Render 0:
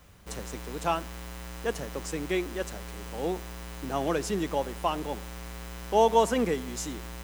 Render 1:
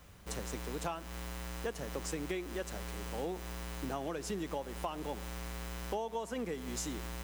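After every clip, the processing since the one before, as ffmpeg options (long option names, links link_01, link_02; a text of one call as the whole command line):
ffmpeg -i in.wav -af "acompressor=threshold=-32dB:ratio=16,volume=-1.5dB" out.wav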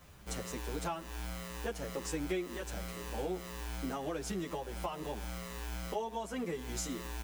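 ffmpeg -i in.wav -filter_complex "[0:a]asplit=2[link_01][link_02];[link_02]adelay=9.2,afreqshift=-2[link_03];[link_01][link_03]amix=inputs=2:normalize=1,volume=3.5dB" out.wav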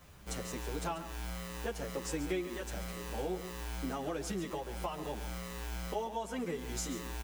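ffmpeg -i in.wav -af "aecho=1:1:139:0.251" out.wav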